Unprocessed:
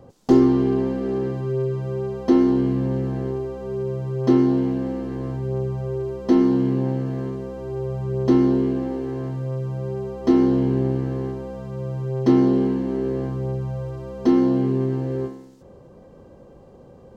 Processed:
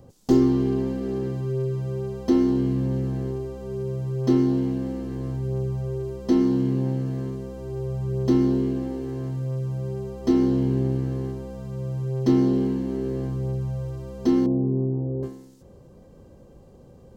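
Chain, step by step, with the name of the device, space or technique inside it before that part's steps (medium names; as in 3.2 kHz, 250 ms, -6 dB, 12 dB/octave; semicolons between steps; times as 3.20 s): 14.46–15.23 s: inverse Chebyshev low-pass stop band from 3.6 kHz, stop band 70 dB; smiley-face EQ (bass shelf 120 Hz +5.5 dB; peaking EQ 1 kHz -4.5 dB 2.8 oct; treble shelf 5.4 kHz +9 dB); trim -2.5 dB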